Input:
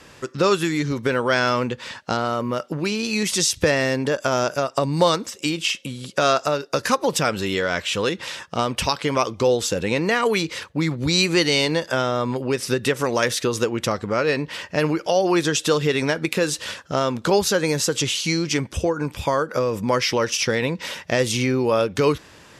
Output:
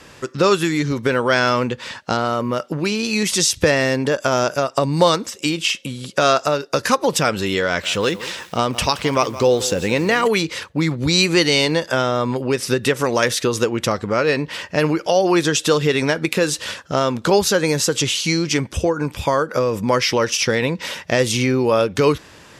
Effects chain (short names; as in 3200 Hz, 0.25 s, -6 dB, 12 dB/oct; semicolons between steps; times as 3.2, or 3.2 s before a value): 7.66–10.28 lo-fi delay 0.172 s, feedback 35%, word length 6-bit, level -14.5 dB; gain +3 dB